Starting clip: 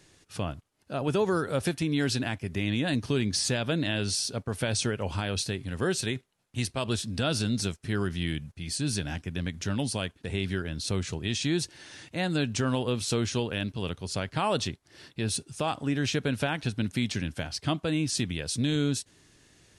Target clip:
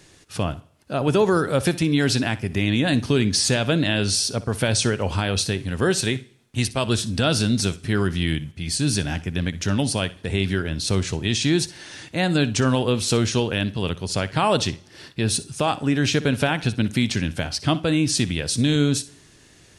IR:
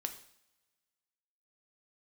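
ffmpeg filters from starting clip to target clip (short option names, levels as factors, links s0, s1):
-filter_complex "[0:a]asplit=2[s0][s1];[1:a]atrim=start_sample=2205,adelay=61[s2];[s1][s2]afir=irnorm=-1:irlink=0,volume=0.158[s3];[s0][s3]amix=inputs=2:normalize=0,volume=2.37"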